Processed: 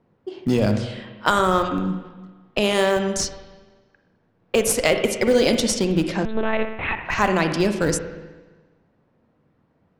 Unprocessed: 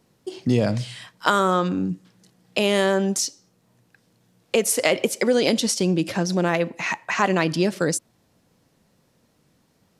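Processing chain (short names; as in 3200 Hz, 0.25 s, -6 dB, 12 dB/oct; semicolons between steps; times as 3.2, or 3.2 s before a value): notches 60/120/180 Hz; low-pass opened by the level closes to 1600 Hz, open at -17 dBFS; in parallel at -7.5 dB: Schmitt trigger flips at -16 dBFS; on the sum: spring tank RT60 1.3 s, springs 38/48/58 ms, chirp 55 ms, DRR 6.5 dB; 6.25–7.05 monotone LPC vocoder at 8 kHz 220 Hz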